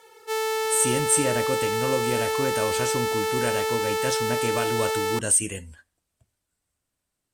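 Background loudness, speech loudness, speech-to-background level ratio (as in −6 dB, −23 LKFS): −25.5 LKFS, −26.5 LKFS, −1.0 dB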